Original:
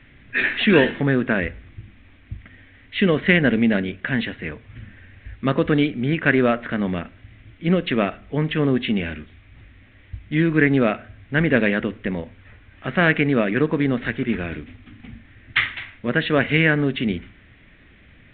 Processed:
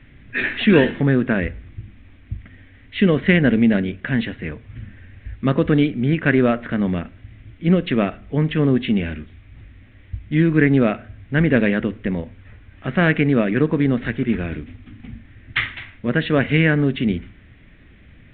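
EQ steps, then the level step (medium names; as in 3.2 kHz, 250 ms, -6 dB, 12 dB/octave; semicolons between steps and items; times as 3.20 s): bass shelf 370 Hz +7 dB; -2.0 dB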